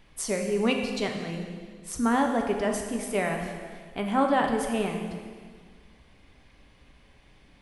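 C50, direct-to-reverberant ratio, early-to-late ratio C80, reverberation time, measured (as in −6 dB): 4.5 dB, 2.0 dB, 6.0 dB, 1.8 s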